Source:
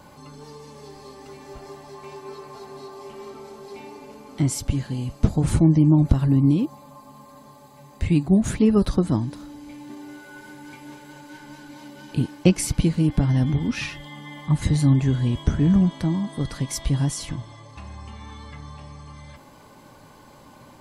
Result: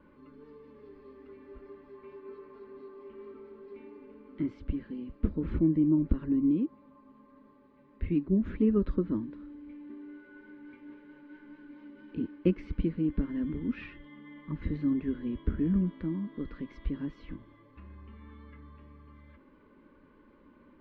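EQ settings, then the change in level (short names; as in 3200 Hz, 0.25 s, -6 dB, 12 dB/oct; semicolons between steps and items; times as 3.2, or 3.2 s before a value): LPF 2000 Hz 12 dB/oct; air absorption 310 m; fixed phaser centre 310 Hz, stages 4; -5.0 dB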